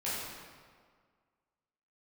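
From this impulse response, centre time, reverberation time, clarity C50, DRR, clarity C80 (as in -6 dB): 112 ms, 1.8 s, -2.0 dB, -10.5 dB, 0.0 dB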